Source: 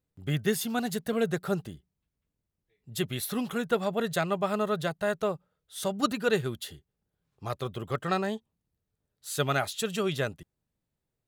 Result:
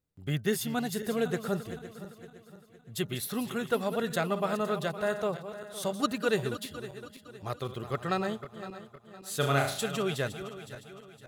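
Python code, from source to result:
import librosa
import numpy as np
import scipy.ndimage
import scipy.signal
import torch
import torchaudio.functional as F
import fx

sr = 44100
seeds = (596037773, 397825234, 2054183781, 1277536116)

y = fx.reverse_delay_fb(x, sr, ms=256, feedback_pct=63, wet_db=-11.0)
y = fx.room_flutter(y, sr, wall_m=6.2, rt60_s=0.48, at=(9.4, 9.82), fade=0.02)
y = F.gain(torch.from_numpy(y), -2.0).numpy()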